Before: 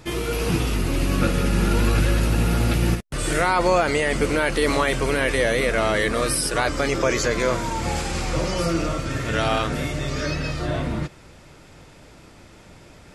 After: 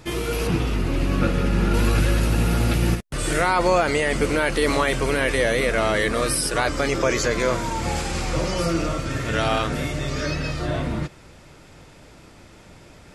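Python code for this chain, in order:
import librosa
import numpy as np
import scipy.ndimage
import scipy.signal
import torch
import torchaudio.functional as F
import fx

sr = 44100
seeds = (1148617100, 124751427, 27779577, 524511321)

y = fx.lowpass(x, sr, hz=3200.0, slope=6, at=(0.47, 1.74))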